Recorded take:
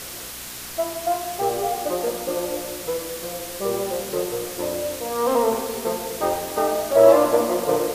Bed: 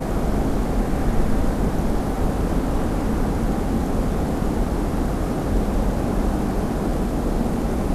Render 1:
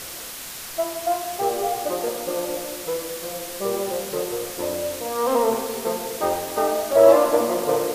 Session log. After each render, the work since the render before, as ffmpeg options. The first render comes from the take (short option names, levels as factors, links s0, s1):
-af "bandreject=f=60:t=h:w=4,bandreject=f=120:t=h:w=4,bandreject=f=180:t=h:w=4,bandreject=f=240:t=h:w=4,bandreject=f=300:t=h:w=4,bandreject=f=360:t=h:w=4,bandreject=f=420:t=h:w=4,bandreject=f=480:t=h:w=4,bandreject=f=540:t=h:w=4"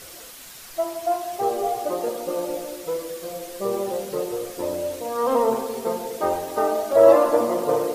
-af "afftdn=nr=8:nf=-35"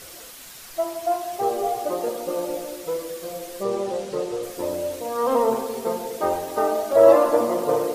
-filter_complex "[0:a]asettb=1/sr,asplit=3[s0][s1][s2];[s0]atrim=end=3.634[s3];[s1]atrim=start=3.63:end=4.43,asetpts=PTS-STARTPTS,afade=t=in:d=0.004:c=qsin,afade=t=out:st=0.796:d=0.004:c=qsin,lowpass=7600[s4];[s2]atrim=start=4.426[s5];[s3][s4]acrossfade=d=0.004:c1=hsin:c2=qsin[s6];[s6][s5]acrossfade=d=0.004:c1=qsin:c2=hsin"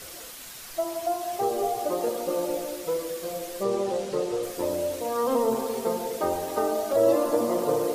-filter_complex "[0:a]acrossover=split=410|3000[s0][s1][s2];[s1]acompressor=threshold=0.0501:ratio=6[s3];[s0][s3][s2]amix=inputs=3:normalize=0"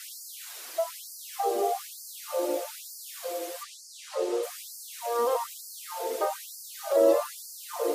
-af "afftfilt=real='re*gte(b*sr/1024,250*pow(4400/250,0.5+0.5*sin(2*PI*1.1*pts/sr)))':imag='im*gte(b*sr/1024,250*pow(4400/250,0.5+0.5*sin(2*PI*1.1*pts/sr)))':win_size=1024:overlap=0.75"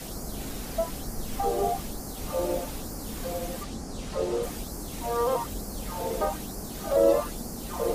-filter_complex "[1:a]volume=0.168[s0];[0:a][s0]amix=inputs=2:normalize=0"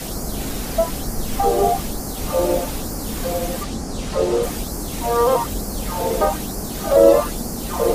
-af "volume=2.99,alimiter=limit=0.891:level=0:latency=1"